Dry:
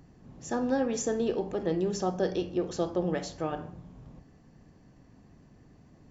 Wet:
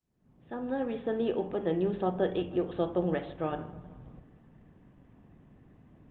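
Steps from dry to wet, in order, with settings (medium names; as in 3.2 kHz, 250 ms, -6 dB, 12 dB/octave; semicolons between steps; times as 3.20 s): fade-in on the opening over 1.33 s; 1.02–1.80 s: bass shelf 74 Hz -9 dB; feedback echo behind a low-pass 157 ms, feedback 56%, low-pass 2.6 kHz, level -18 dB; resampled via 8 kHz; Opus 32 kbps 48 kHz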